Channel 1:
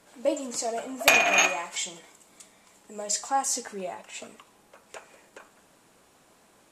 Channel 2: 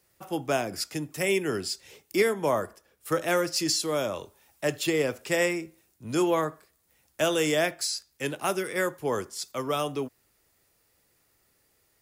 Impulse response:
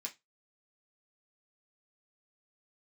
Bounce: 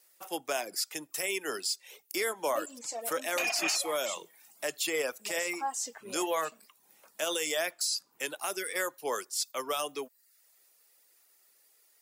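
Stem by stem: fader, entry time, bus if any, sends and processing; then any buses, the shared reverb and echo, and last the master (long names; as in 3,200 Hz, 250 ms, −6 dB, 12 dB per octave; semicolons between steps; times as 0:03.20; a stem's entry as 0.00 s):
−6.5 dB, 2.30 s, no send, high-pass filter 99 Hz; low-shelf EQ 350 Hz −7 dB
−2.0 dB, 0.00 s, no send, high-pass filter 460 Hz 12 dB per octave; pitch vibrato 1.1 Hz 5.6 cents; high-shelf EQ 3,600 Hz +9 dB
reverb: not used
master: reverb reduction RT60 0.54 s; brickwall limiter −20.5 dBFS, peak gain reduction 10.5 dB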